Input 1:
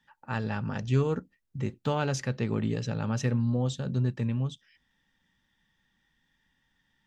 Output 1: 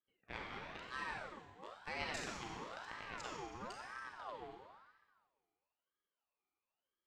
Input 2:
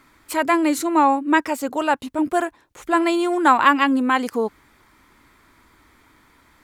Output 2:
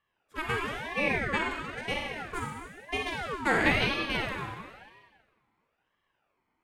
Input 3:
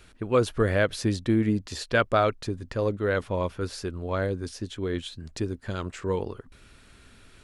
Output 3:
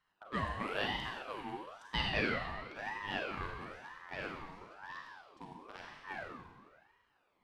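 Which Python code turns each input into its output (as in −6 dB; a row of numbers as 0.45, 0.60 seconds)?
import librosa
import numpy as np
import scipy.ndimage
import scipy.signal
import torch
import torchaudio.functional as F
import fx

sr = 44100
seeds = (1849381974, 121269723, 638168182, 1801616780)

y = fx.wiener(x, sr, points=41)
y = fx.highpass(y, sr, hz=1100.0, slope=6)
y = fx.rev_schroeder(y, sr, rt60_s=1.5, comb_ms=31, drr_db=-2.0)
y = fx.ring_lfo(y, sr, carrier_hz=1000.0, swing_pct=45, hz=1.0)
y = F.gain(torch.from_numpy(y), -6.0).numpy()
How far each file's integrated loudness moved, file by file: −16.5, −10.5, −12.0 LU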